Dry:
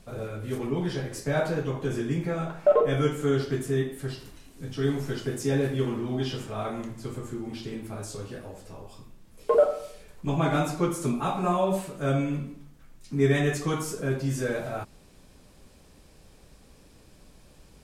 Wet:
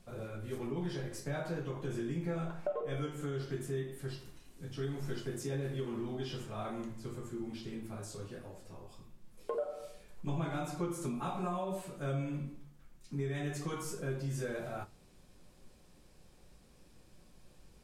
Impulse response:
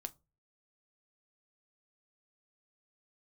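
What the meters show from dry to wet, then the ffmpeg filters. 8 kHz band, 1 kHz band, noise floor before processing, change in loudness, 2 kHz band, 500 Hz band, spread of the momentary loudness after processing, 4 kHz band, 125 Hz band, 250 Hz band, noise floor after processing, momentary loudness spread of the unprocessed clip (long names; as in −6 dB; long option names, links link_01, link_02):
−9.0 dB, −11.0 dB, −55 dBFS, −11.5 dB, −11.5 dB, −13.0 dB, 11 LU, −10.0 dB, −9.5 dB, −10.5 dB, −61 dBFS, 15 LU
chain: -filter_complex "[0:a]acompressor=threshold=-25dB:ratio=12[link_01];[1:a]atrim=start_sample=2205,asetrate=48510,aresample=44100[link_02];[link_01][link_02]afir=irnorm=-1:irlink=0,volume=-3.5dB"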